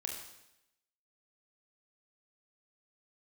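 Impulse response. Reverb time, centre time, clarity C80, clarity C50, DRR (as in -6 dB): 0.85 s, 41 ms, 6.5 dB, 4.5 dB, -0.5 dB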